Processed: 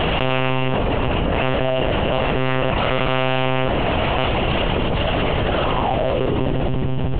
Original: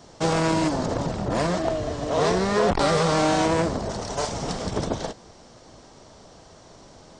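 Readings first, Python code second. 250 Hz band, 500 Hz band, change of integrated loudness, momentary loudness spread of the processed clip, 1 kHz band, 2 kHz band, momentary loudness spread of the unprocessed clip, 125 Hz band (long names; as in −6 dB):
+3.5 dB, +4.5 dB, +4.0 dB, 1 LU, +4.5 dB, +8.5 dB, 9 LU, +8.0 dB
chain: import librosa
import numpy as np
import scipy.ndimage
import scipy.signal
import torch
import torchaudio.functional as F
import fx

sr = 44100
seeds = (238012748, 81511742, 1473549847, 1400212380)

y = fx.filter_sweep_lowpass(x, sr, from_hz=2800.0, to_hz=130.0, start_s=5.18, end_s=6.93, q=7.2)
y = fx.air_absorb(y, sr, metres=180.0)
y = fx.echo_diffused(y, sr, ms=577, feedback_pct=44, wet_db=-12.5)
y = fx.lpc_monotone(y, sr, seeds[0], pitch_hz=130.0, order=10)
y = fx.env_flatten(y, sr, amount_pct=100)
y = F.gain(torch.from_numpy(y), -1.0).numpy()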